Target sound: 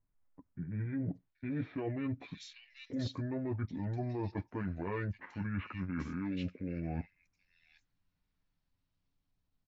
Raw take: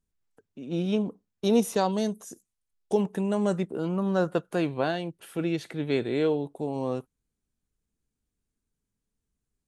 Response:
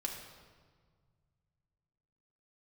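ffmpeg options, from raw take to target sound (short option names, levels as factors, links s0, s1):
-filter_complex "[0:a]lowpass=3900,aecho=1:1:7:0.7,acrossover=split=2200[s0][s1];[s1]dynaudnorm=f=170:g=13:m=2.37[s2];[s0][s2]amix=inputs=2:normalize=0,alimiter=limit=0.15:level=0:latency=1:release=14,areverse,acompressor=threshold=0.02:ratio=20,areverse,asetrate=27781,aresample=44100,atempo=1.5874,acrossover=split=2400[s3][s4];[s4]adelay=780[s5];[s3][s5]amix=inputs=2:normalize=0,volume=1.12"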